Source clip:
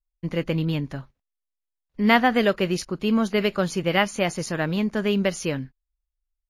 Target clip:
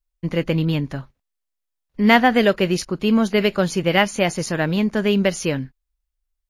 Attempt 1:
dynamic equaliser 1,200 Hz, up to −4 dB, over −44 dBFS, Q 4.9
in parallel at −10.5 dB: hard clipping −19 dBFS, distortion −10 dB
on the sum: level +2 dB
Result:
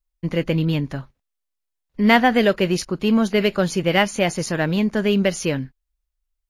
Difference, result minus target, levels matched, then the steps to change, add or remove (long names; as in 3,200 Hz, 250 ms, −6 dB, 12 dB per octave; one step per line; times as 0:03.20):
hard clipping: distortion +15 dB
change: hard clipping −10 dBFS, distortion −24 dB